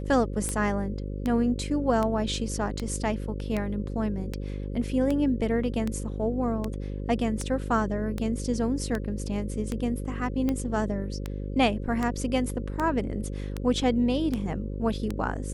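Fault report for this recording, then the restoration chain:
buzz 50 Hz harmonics 11 -33 dBFS
tick 78 rpm -16 dBFS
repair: de-click; de-hum 50 Hz, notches 11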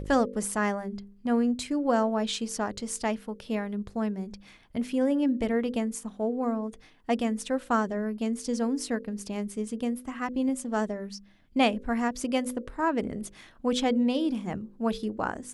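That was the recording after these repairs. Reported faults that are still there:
nothing left

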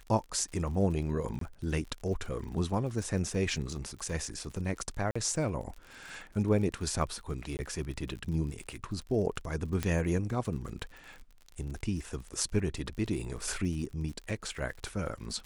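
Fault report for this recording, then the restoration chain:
crackle 49 per s -40 dBFS
1.39–1.41 s: dropout 23 ms
5.11–5.16 s: dropout 45 ms
7.57–7.59 s: dropout 19 ms
9.83 s: pop -16 dBFS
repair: de-click; interpolate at 1.39 s, 23 ms; interpolate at 5.11 s, 45 ms; interpolate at 7.57 s, 19 ms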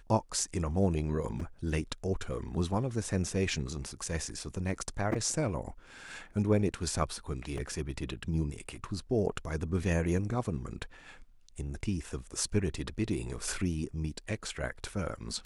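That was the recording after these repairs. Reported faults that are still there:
nothing left

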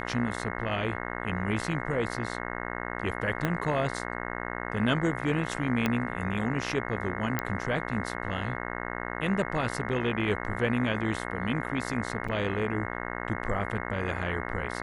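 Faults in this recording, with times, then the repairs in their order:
buzz 60 Hz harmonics 36 -35 dBFS
3.45 s: pop -14 dBFS
5.86 s: pop -12 dBFS
7.39 s: pop -13 dBFS
12.28–12.29 s: dropout 5.6 ms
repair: de-click; de-hum 60 Hz, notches 36; interpolate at 12.28 s, 5.6 ms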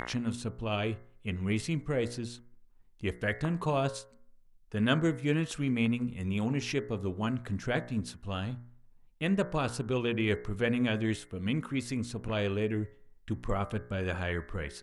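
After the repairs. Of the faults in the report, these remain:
3.45 s: pop
5.86 s: pop

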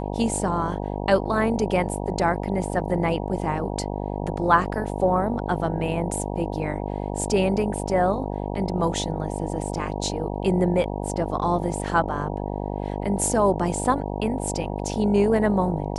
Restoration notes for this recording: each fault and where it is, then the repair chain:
buzz 50 Hz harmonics 19 -29 dBFS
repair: de-hum 50 Hz, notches 19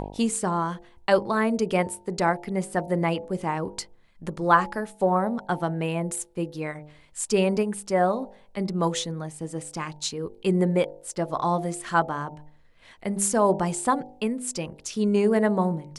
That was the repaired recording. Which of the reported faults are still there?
nothing left

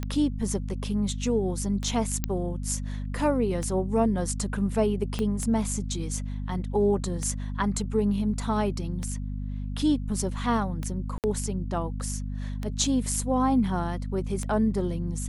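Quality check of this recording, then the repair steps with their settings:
hum 50 Hz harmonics 5 -32 dBFS
tick 33 1/3 rpm -18 dBFS
2.24 s: pop -11 dBFS
5.19 s: pop -16 dBFS
11.18–11.24 s: dropout 58 ms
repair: de-click; de-hum 50 Hz, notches 5; interpolate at 11.18 s, 58 ms

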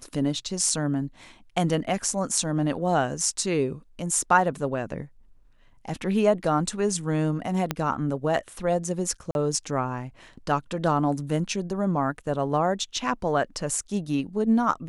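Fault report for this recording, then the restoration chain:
7.71 s: pop -10 dBFS
9.31–9.35 s: dropout 41 ms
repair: de-click; interpolate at 9.31 s, 41 ms

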